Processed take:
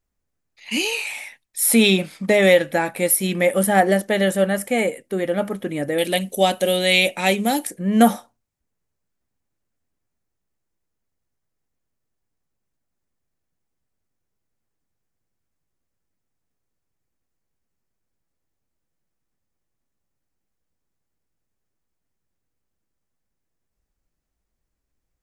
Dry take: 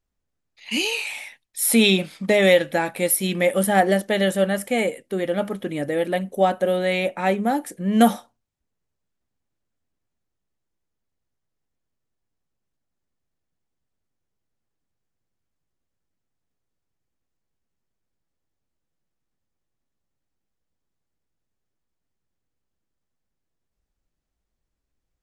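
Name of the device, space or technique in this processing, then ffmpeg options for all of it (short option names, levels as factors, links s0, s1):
exciter from parts: -filter_complex "[0:a]asplit=2[s0][s1];[s1]highpass=f=2400:w=0.5412,highpass=f=2400:w=1.3066,asoftclip=type=tanh:threshold=0.0944,highpass=2200,volume=0.316[s2];[s0][s2]amix=inputs=2:normalize=0,asettb=1/sr,asplit=3[s3][s4][s5];[s3]atrim=end=5.984[s6];[s4]atrim=start=5.98:end=7.67,asetpts=PTS-STARTPTS,afade=t=in:d=0.004:c=qsin,afade=t=out:st=1.686:d=0.004:c=qsin,highshelf=f=2200:t=q:w=1.5:g=12[s7];[s5]atrim=start=7.666[s8];[s6][s7]acrossfade=d=0.004:c1=hsin:c2=qsin[s9];[s9][s8]acrossfade=d=0.004:c1=qsin:c2=hsin,volume=1.19"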